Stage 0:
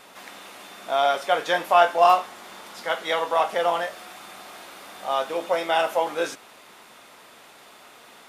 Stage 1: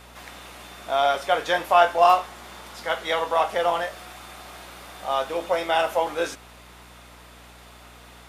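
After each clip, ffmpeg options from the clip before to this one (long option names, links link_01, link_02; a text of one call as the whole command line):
ffmpeg -i in.wav -af "aeval=exprs='val(0)+0.00316*(sin(2*PI*60*n/s)+sin(2*PI*2*60*n/s)/2+sin(2*PI*3*60*n/s)/3+sin(2*PI*4*60*n/s)/4+sin(2*PI*5*60*n/s)/5)':channel_layout=same" out.wav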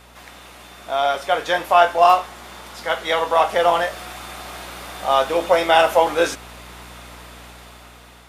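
ffmpeg -i in.wav -af "dynaudnorm=framelen=340:gausssize=7:maxgain=10dB" out.wav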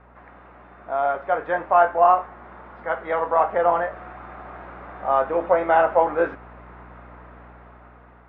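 ffmpeg -i in.wav -af "lowpass=frequency=1700:width=0.5412,lowpass=frequency=1700:width=1.3066,volume=-2.5dB" out.wav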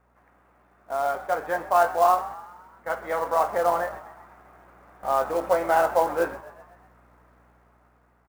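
ffmpeg -i in.wav -filter_complex "[0:a]agate=range=-10dB:threshold=-35dB:ratio=16:detection=peak,acrusher=bits=5:mode=log:mix=0:aa=0.000001,asplit=6[link_01][link_02][link_03][link_04][link_05][link_06];[link_02]adelay=127,afreqshift=49,volume=-17.5dB[link_07];[link_03]adelay=254,afreqshift=98,volume=-22.2dB[link_08];[link_04]adelay=381,afreqshift=147,volume=-27dB[link_09];[link_05]adelay=508,afreqshift=196,volume=-31.7dB[link_10];[link_06]adelay=635,afreqshift=245,volume=-36.4dB[link_11];[link_01][link_07][link_08][link_09][link_10][link_11]amix=inputs=6:normalize=0,volume=-3.5dB" out.wav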